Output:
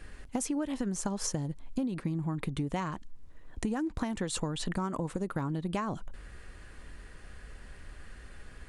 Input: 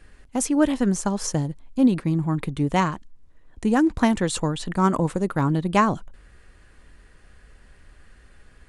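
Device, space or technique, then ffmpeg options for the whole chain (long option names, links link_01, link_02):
serial compression, leveller first: -af "acompressor=threshold=-22dB:ratio=3,acompressor=threshold=-33dB:ratio=6,volume=3dB"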